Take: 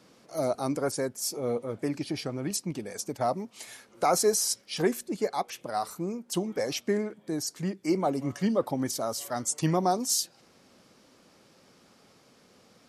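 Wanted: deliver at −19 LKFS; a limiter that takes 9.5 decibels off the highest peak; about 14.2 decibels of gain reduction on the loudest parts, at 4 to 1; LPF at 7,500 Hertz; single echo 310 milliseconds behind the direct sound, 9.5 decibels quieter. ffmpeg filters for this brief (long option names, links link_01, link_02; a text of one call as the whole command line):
ffmpeg -i in.wav -af "lowpass=7500,acompressor=threshold=-38dB:ratio=4,alimiter=level_in=10dB:limit=-24dB:level=0:latency=1,volume=-10dB,aecho=1:1:310:0.335,volume=24.5dB" out.wav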